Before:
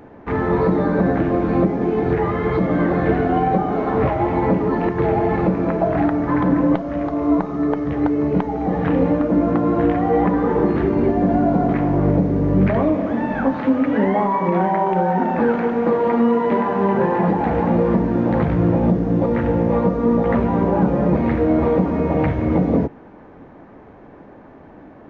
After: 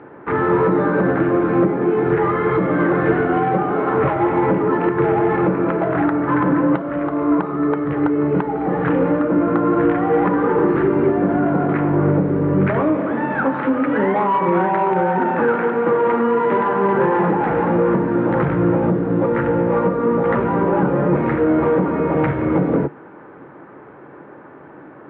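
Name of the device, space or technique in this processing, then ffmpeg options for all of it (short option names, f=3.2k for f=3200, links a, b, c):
overdrive pedal into a guitar cabinet: -filter_complex "[0:a]asplit=2[a][b];[b]highpass=f=720:p=1,volume=13dB,asoftclip=type=tanh:threshold=-6dB[c];[a][c]amix=inputs=2:normalize=0,lowpass=f=1.3k:p=1,volume=-6dB,highpass=90,equalizer=f=140:t=q:w=4:g=7,equalizer=f=230:t=q:w=4:g=-4,equalizer=f=350:t=q:w=4:g=4,equalizer=f=690:t=q:w=4:g=-7,equalizer=f=1.4k:t=q:w=4:g=6,lowpass=f=3.5k:w=0.5412,lowpass=f=3.5k:w=1.3066"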